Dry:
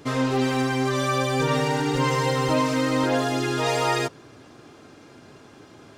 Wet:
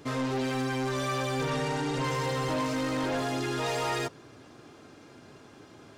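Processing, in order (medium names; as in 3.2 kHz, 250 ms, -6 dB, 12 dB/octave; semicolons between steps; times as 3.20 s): 1.50–2.04 s: steep low-pass 11 kHz; saturation -22 dBFS, distortion -12 dB; trim -3.5 dB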